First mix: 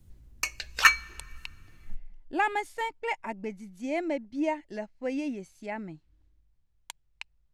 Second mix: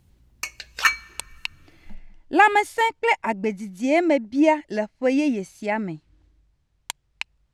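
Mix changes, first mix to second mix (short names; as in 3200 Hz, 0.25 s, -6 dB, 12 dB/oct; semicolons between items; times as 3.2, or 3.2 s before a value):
speech +11.5 dB; master: add HPF 77 Hz 6 dB/oct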